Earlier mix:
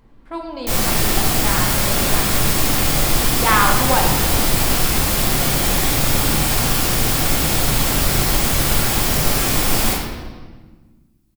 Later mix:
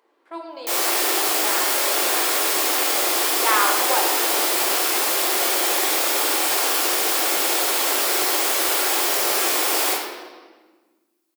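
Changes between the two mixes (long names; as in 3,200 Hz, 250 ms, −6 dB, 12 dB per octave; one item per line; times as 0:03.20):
speech −4.0 dB
master: add elliptic high-pass filter 350 Hz, stop band 70 dB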